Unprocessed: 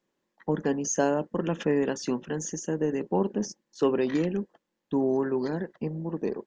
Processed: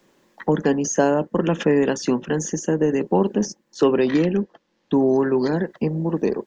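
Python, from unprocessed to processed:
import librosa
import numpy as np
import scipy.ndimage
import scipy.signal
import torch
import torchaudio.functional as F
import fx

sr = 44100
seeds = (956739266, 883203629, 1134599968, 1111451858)

y = fx.lowpass(x, sr, hz=5900.0, slope=24, at=(3.84, 5.41))
y = fx.band_squash(y, sr, depth_pct=40)
y = y * librosa.db_to_amplitude(7.5)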